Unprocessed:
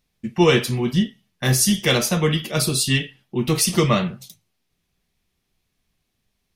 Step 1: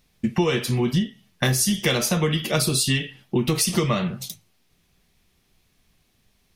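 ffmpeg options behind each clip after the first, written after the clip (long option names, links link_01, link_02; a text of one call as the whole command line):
ffmpeg -i in.wav -af "acompressor=threshold=-27dB:ratio=8,volume=8.5dB" out.wav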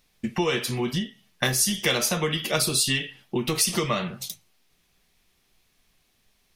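ffmpeg -i in.wav -af "equalizer=frequency=97:width=0.32:gain=-8" out.wav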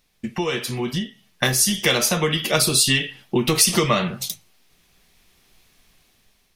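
ffmpeg -i in.wav -af "dynaudnorm=framelen=430:gausssize=5:maxgain=9.5dB" out.wav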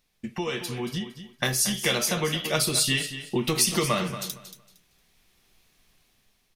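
ffmpeg -i in.wav -af "aecho=1:1:230|460|690:0.251|0.0553|0.0122,volume=-6dB" out.wav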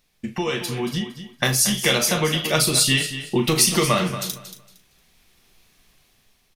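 ffmpeg -i in.wav -filter_complex "[0:a]asplit=2[link_01][link_02];[link_02]adelay=38,volume=-10.5dB[link_03];[link_01][link_03]amix=inputs=2:normalize=0,volume=5dB" out.wav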